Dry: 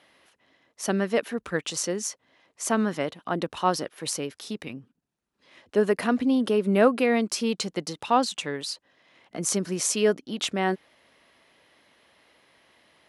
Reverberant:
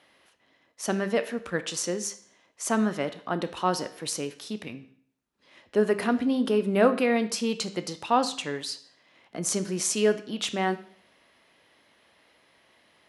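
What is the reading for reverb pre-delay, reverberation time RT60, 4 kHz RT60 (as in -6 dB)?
15 ms, 0.55 s, 0.55 s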